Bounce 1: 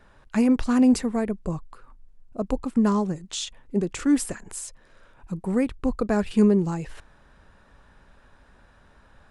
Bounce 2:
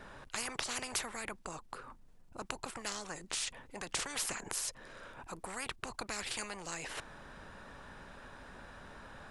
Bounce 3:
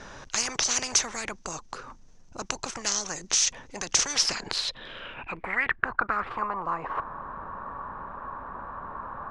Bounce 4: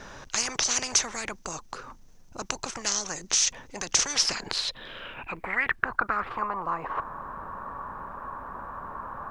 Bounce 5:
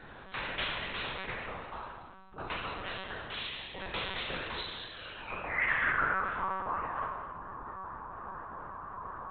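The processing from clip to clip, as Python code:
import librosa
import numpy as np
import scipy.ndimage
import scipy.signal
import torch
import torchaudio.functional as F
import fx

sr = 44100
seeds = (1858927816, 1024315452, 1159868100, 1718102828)

y1 = fx.peak_eq(x, sr, hz=66.0, db=-5.0, octaves=2.3)
y1 = fx.spectral_comp(y1, sr, ratio=10.0)
y1 = F.gain(torch.from_numpy(y1), -4.5).numpy()
y2 = fx.filter_sweep_lowpass(y1, sr, from_hz=6100.0, to_hz=1100.0, start_s=4.07, end_s=6.38, q=7.3)
y2 = fx.high_shelf(y2, sr, hz=6600.0, db=-4.5)
y2 = F.gain(torch.from_numpy(y2), 7.0).numpy()
y3 = fx.quant_dither(y2, sr, seeds[0], bits=12, dither='none')
y4 = fx.spec_trails(y3, sr, decay_s=1.56)
y4 = fx.vibrato(y4, sr, rate_hz=4.3, depth_cents=64.0)
y4 = fx.lpc_monotone(y4, sr, seeds[1], pitch_hz=190.0, order=16)
y4 = F.gain(torch.from_numpy(y4), -8.0).numpy()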